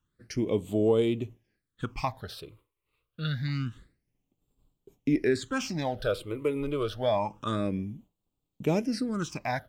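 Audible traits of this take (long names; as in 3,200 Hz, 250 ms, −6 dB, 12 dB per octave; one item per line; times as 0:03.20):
phaser sweep stages 8, 0.27 Hz, lowest notch 210–1,800 Hz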